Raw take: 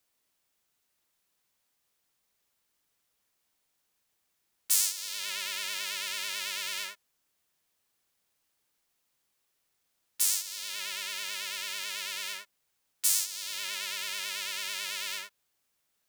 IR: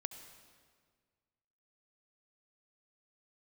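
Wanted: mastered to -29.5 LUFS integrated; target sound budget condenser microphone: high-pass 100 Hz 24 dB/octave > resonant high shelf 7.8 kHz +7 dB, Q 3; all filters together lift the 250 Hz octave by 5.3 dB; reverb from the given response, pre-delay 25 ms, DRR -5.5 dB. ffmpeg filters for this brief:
-filter_complex "[0:a]equalizer=f=250:t=o:g=8.5,asplit=2[s0][s1];[1:a]atrim=start_sample=2205,adelay=25[s2];[s1][s2]afir=irnorm=-1:irlink=0,volume=2.37[s3];[s0][s3]amix=inputs=2:normalize=0,highpass=f=100:w=0.5412,highpass=f=100:w=1.3066,highshelf=f=7800:t=q:w=3:g=7,volume=0.266"

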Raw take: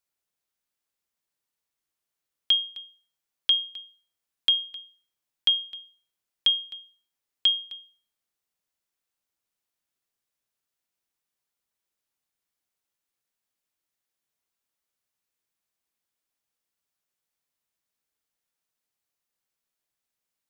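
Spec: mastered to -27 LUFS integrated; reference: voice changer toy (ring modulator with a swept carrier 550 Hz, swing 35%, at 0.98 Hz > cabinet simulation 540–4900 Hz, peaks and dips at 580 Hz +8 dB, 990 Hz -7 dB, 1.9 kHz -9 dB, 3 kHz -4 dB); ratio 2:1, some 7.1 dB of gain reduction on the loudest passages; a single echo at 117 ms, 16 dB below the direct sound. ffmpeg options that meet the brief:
-af "acompressor=threshold=0.0316:ratio=2,aecho=1:1:117:0.158,aeval=exprs='val(0)*sin(2*PI*550*n/s+550*0.35/0.98*sin(2*PI*0.98*n/s))':c=same,highpass=540,equalizer=f=580:t=q:w=4:g=8,equalizer=f=990:t=q:w=4:g=-7,equalizer=f=1900:t=q:w=4:g=-9,equalizer=f=3000:t=q:w=4:g=-4,lowpass=f=4900:w=0.5412,lowpass=f=4900:w=1.3066,volume=3.35"

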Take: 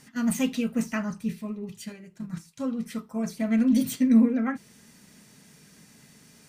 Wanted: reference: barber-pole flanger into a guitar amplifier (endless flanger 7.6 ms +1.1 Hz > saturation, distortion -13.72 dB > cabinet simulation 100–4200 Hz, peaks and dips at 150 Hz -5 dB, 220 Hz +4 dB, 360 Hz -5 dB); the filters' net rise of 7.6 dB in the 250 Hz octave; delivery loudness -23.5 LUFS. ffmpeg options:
-filter_complex "[0:a]equalizer=f=250:t=o:g=6,asplit=2[s0][s1];[s1]adelay=7.6,afreqshift=1.1[s2];[s0][s2]amix=inputs=2:normalize=1,asoftclip=threshold=0.224,highpass=100,equalizer=f=150:t=q:w=4:g=-5,equalizer=f=220:t=q:w=4:g=4,equalizer=f=360:t=q:w=4:g=-5,lowpass=f=4200:w=0.5412,lowpass=f=4200:w=1.3066,volume=1.06"

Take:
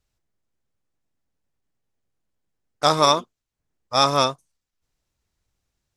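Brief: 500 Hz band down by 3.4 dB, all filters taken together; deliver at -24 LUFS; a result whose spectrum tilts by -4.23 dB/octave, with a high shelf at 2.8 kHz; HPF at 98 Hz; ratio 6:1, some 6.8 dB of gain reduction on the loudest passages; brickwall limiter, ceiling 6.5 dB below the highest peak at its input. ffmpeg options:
-af "highpass=98,equalizer=f=500:t=o:g=-4,highshelf=f=2800:g=-6,acompressor=threshold=0.0891:ratio=6,volume=2,alimiter=limit=0.335:level=0:latency=1"

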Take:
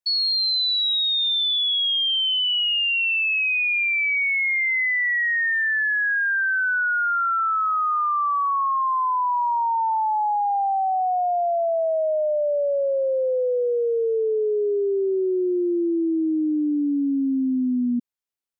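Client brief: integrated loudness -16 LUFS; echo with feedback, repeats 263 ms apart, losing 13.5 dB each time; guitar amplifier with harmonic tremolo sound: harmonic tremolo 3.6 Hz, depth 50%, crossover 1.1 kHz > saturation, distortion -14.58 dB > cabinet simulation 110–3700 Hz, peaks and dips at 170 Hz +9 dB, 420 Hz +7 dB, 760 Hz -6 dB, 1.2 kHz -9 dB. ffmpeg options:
-filter_complex "[0:a]aecho=1:1:263|526:0.211|0.0444,acrossover=split=1100[s0][s1];[s0]aeval=exprs='val(0)*(1-0.5/2+0.5/2*cos(2*PI*3.6*n/s))':c=same[s2];[s1]aeval=exprs='val(0)*(1-0.5/2-0.5/2*cos(2*PI*3.6*n/s))':c=same[s3];[s2][s3]amix=inputs=2:normalize=0,asoftclip=threshold=0.0596,highpass=110,equalizer=f=170:t=q:w=4:g=9,equalizer=f=420:t=q:w=4:g=7,equalizer=f=760:t=q:w=4:g=-6,equalizer=f=1200:t=q:w=4:g=-9,lowpass=f=3700:w=0.5412,lowpass=f=3700:w=1.3066,volume=3.55"

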